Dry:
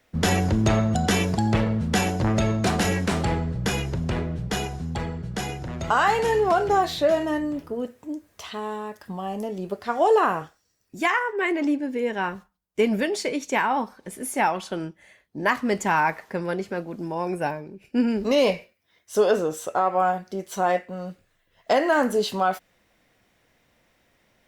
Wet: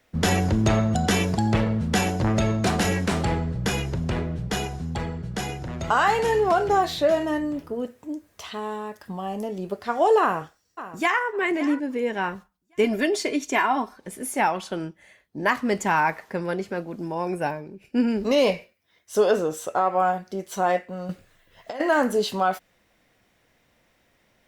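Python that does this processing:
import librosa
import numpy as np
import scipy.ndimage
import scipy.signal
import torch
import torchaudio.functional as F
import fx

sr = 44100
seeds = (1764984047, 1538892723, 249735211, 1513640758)

y = fx.echo_throw(x, sr, start_s=10.21, length_s=1.02, ms=560, feedback_pct=25, wet_db=-14.0)
y = fx.comb(y, sr, ms=2.9, depth=0.65, at=(12.84, 13.97))
y = fx.over_compress(y, sr, threshold_db=-26.0, ratio=-0.5, at=(21.09, 21.82))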